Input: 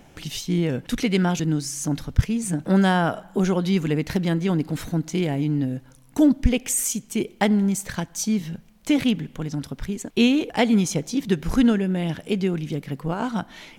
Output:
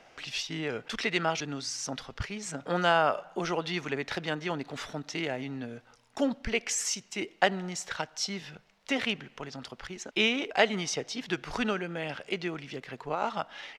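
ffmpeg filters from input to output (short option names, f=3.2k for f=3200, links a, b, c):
-filter_complex "[0:a]acrossover=split=490 6900:gain=0.112 1 0.1[a][b][c];[a][b][c]amix=inputs=3:normalize=0,asetrate=40440,aresample=44100,atempo=1.09051"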